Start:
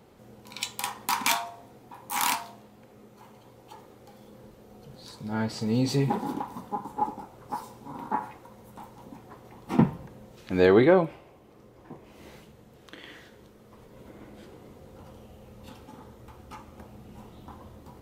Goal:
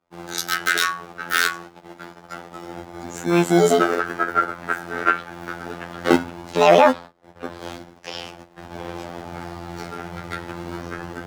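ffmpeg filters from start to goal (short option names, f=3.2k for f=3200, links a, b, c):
-filter_complex "[0:a]agate=range=-40dB:threshold=-51dB:ratio=16:detection=peak,asetrate=70560,aresample=44100,asplit=2[a][b];[b]acompressor=threshold=-40dB:ratio=5,volume=-1dB[c];[a][c]amix=inputs=2:normalize=0,afftfilt=real='hypot(re,im)*cos(PI*b)':imag='0':win_size=2048:overlap=0.75,acrossover=split=370|920[d][e][f];[d]acrusher=samples=33:mix=1:aa=0.000001:lfo=1:lforange=19.8:lforate=0.23[g];[g][e][f]amix=inputs=3:normalize=0,highshelf=f=7.8k:g=-10,alimiter=level_in=14dB:limit=-1dB:release=50:level=0:latency=1,volume=-1dB"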